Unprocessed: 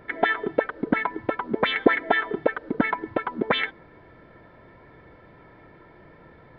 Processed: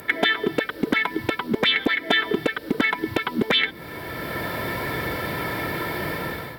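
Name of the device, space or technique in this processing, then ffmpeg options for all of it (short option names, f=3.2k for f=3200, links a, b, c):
FM broadcast chain: -filter_complex "[0:a]highpass=64,dynaudnorm=f=210:g=5:m=15dB,acrossover=split=390|2300[a][b][c];[a]acompressor=threshold=-25dB:ratio=4[d];[b]acompressor=threshold=-34dB:ratio=4[e];[c]acompressor=threshold=-33dB:ratio=4[f];[d][e][f]amix=inputs=3:normalize=0,aemphasis=mode=production:type=75fm,alimiter=limit=-16dB:level=0:latency=1:release=389,asoftclip=type=hard:threshold=-18.5dB,lowpass=f=15k:w=0.5412,lowpass=f=15k:w=1.3066,aemphasis=mode=production:type=75fm,volume=8dB"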